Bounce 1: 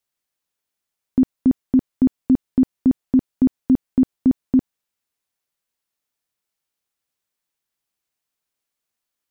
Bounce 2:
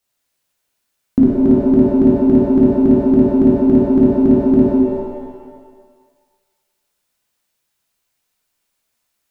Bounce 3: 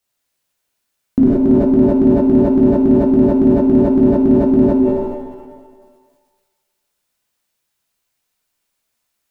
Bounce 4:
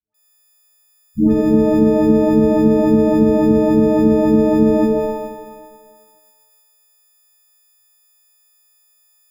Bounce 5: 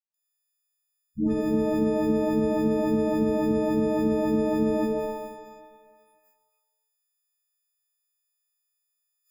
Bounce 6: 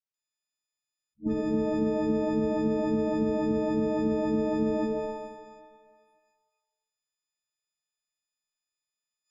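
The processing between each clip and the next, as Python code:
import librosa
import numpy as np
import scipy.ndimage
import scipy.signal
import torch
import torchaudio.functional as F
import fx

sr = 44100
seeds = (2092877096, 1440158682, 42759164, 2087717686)

y1 = fx.rev_shimmer(x, sr, seeds[0], rt60_s=1.5, semitones=7, shimmer_db=-8, drr_db=-4.0)
y1 = y1 * 10.0 ** (5.0 / 20.0)
y2 = fx.sustainer(y1, sr, db_per_s=41.0)
y2 = y2 * 10.0 ** (-1.0 / 20.0)
y3 = fx.freq_snap(y2, sr, grid_st=6)
y3 = fx.dispersion(y3, sr, late='highs', ms=145.0, hz=600.0)
y3 = y3 * 10.0 ** (-1.0 / 20.0)
y4 = fx.noise_reduce_blind(y3, sr, reduce_db=16)
y4 = fx.tilt_shelf(y4, sr, db=-3.5, hz=860.0)
y4 = y4 * 10.0 ** (-8.5 / 20.0)
y5 = scipy.signal.sosfilt(scipy.signal.butter(4, 7300.0, 'lowpass', fs=sr, output='sos'), y4)
y5 = fx.attack_slew(y5, sr, db_per_s=480.0)
y5 = y5 * 10.0 ** (-3.0 / 20.0)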